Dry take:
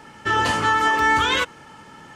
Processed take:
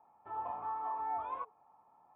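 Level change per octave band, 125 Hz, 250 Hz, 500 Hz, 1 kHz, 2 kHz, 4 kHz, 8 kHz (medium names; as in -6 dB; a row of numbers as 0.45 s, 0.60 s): under -30 dB, -30.5 dB, -21.5 dB, -16.5 dB, -39.5 dB, under -40 dB, under -40 dB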